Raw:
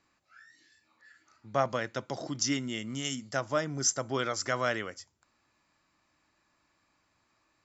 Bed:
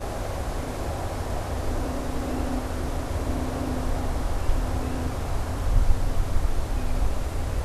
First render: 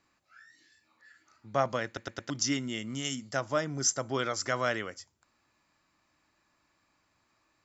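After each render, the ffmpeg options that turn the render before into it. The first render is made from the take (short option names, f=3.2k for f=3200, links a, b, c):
-filter_complex "[0:a]asplit=5[a][b][c][d][e];[a]atrim=end=1.972[f];[b]atrim=start=1.858:end=1.972[g];[c]atrim=start=1.858:end=1.972[h];[d]atrim=start=1.858:end=1.972[i];[e]atrim=start=2.298[j];[f][g]acrossfade=d=0.004:c1=hsin:c2=hsin[k];[k][h]acrossfade=d=0.004:c1=hsin:c2=hsin[l];[l][i]acrossfade=d=0.004:c1=hsin:c2=hsin[m];[m][j]acrossfade=d=0.004:c1=hsin:c2=hsin"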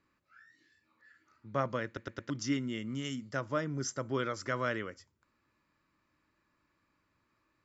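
-af "lowpass=f=1.6k:p=1,equalizer=f=740:t=o:w=0.41:g=-12"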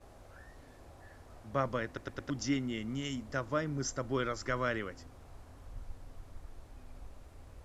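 -filter_complex "[1:a]volume=-25dB[a];[0:a][a]amix=inputs=2:normalize=0"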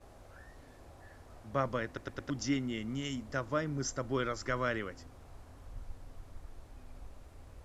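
-af anull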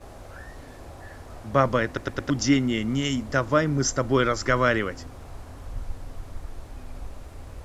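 -af "volume=12dB"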